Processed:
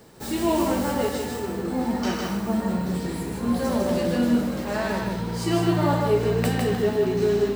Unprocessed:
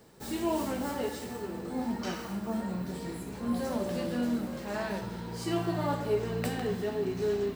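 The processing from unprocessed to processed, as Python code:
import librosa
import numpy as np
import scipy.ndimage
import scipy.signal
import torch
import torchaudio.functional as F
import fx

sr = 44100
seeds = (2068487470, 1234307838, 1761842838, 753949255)

y = x + 10.0 ** (-4.0 / 20.0) * np.pad(x, (int(154 * sr / 1000.0), 0))[:len(x)]
y = y * librosa.db_to_amplitude(7.0)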